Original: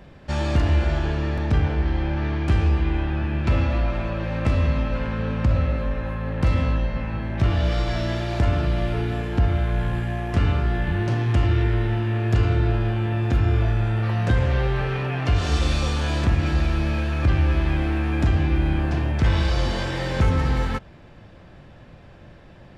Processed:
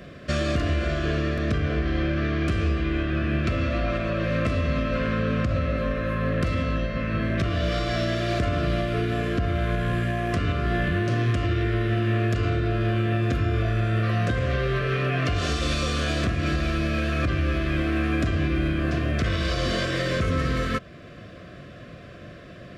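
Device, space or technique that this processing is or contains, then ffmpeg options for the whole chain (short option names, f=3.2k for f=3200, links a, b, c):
PA system with an anti-feedback notch: -af "highpass=f=140:p=1,asuperstop=centerf=870:order=12:qfactor=3,alimiter=limit=-21.5dB:level=0:latency=1:release=364,volume=6.5dB"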